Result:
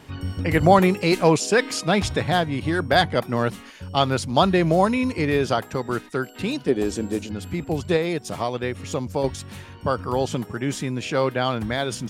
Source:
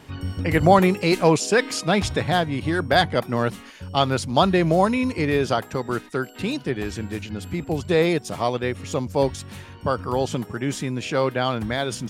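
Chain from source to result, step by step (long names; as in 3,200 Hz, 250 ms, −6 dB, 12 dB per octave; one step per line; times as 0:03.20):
0:06.68–0:07.32: octave-band graphic EQ 125/250/500/2,000/8,000 Hz −7/+6/+7/−6/+7 dB
0:07.96–0:09.24: downward compressor, threshold −20 dBFS, peak gain reduction 6.5 dB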